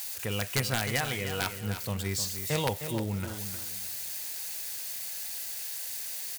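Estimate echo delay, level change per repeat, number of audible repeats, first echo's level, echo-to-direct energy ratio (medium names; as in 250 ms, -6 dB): 309 ms, -12.0 dB, 3, -9.5 dB, -9.0 dB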